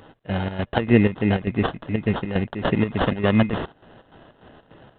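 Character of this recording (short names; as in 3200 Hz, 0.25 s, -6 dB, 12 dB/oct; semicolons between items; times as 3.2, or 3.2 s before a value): chopped level 3.4 Hz, depth 65%, duty 65%; aliases and images of a low sample rate 2300 Hz, jitter 0%; G.726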